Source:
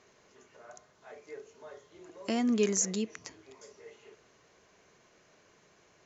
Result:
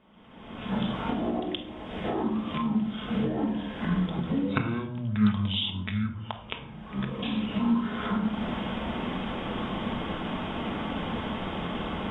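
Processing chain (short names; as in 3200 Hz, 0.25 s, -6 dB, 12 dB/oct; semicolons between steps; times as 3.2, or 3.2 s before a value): recorder AGC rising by 78 dB/s; speed mistake 15 ips tape played at 7.5 ips; high shelf 4800 Hz -9.5 dB; shoebox room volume 1000 m³, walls furnished, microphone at 1.5 m; Doppler distortion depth 0.11 ms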